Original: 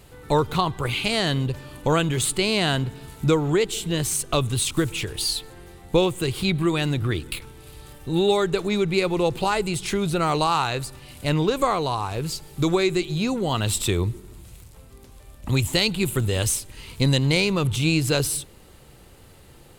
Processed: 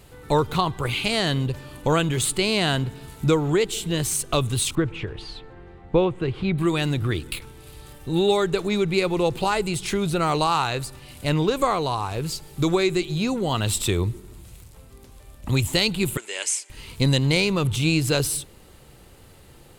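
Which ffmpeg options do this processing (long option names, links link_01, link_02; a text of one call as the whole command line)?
ffmpeg -i in.wav -filter_complex "[0:a]asettb=1/sr,asplit=3[link_01][link_02][link_03];[link_01]atrim=end=4.754[link_04];[link_02]atrim=start=4.75:end=6.58,asetpts=PTS-STARTPTS,afade=type=in:duration=0.004:curve=qsin,afade=type=out:start_time=1.826:duration=0.004:curve=qsin,lowpass=2000[link_05];[link_03]atrim=start=6.576[link_06];[link_04][link_05]acrossfade=duration=0.004:curve1=hsin:curve2=qsin[link_07];[link_07][link_06]acrossfade=duration=0.004:curve1=qsin:curve2=hsin,asettb=1/sr,asplit=3[link_08][link_09][link_10];[link_08]atrim=end=16.174[link_11];[link_09]atrim=start=16.17:end=16.7,asetpts=PTS-STARTPTS,afade=type=in:duration=0.004:curve=qsin,afade=type=out:start_time=0.526:duration=0.004:curve=qsin,highpass=frequency=480:width=0.5412,highpass=frequency=480:width=1.3066,equalizer=frequency=510:width_type=q:width=4:gain=-10,equalizer=frequency=730:width_type=q:width=4:gain=-8,equalizer=frequency=1200:width_type=q:width=4:gain=-7,equalizer=frequency=2200:width_type=q:width=4:gain=7,equalizer=frequency=3800:width_type=q:width=4:gain=-8,equalizer=frequency=7100:width_type=q:width=4:gain=5,lowpass=frequency=8900:width=0.5412,lowpass=frequency=8900:width=1.3066[link_12];[link_10]atrim=start=16.696[link_13];[link_11][link_12]acrossfade=duration=0.004:curve1=hsin:curve2=qsin[link_14];[link_14][link_13]acrossfade=duration=0.004:curve1=qsin:curve2=hsin" out.wav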